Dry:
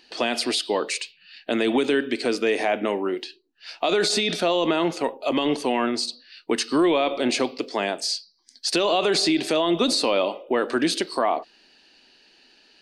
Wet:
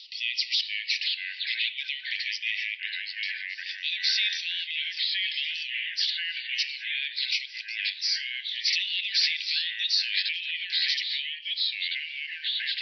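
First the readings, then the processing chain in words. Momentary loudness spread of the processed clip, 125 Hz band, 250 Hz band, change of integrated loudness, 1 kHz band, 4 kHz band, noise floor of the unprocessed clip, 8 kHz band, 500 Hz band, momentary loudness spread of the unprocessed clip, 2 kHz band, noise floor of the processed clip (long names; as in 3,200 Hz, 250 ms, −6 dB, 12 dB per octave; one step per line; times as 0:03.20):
7 LU, below −40 dB, below −40 dB, −4.0 dB, below −40 dB, +2.5 dB, −58 dBFS, −10.5 dB, below −40 dB, 9 LU, +1.5 dB, −42 dBFS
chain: backwards echo 544 ms −22.5 dB
brick-wall band-pass 1,900–5,900 Hz
delay with pitch and tempo change per echo 459 ms, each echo −2 semitones, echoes 2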